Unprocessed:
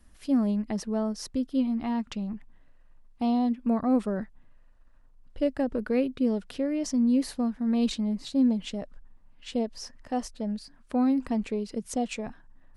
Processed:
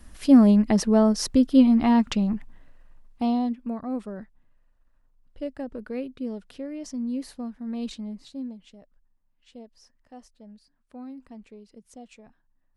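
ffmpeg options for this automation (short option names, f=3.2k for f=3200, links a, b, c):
-af "volume=10dB,afade=t=out:st=2.02:d=1.24:silence=0.398107,afade=t=out:st=3.26:d=0.48:silence=0.375837,afade=t=out:st=8.06:d=0.53:silence=0.334965"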